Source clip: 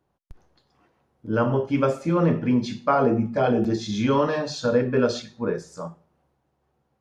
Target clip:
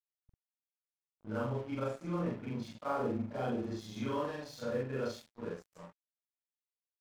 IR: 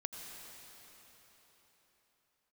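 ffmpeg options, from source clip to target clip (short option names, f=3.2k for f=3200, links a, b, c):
-af "afftfilt=real='re':imag='-im':win_size=4096:overlap=0.75,aeval=exprs='sgn(val(0))*max(abs(val(0))-0.0075,0)':c=same,volume=-9dB"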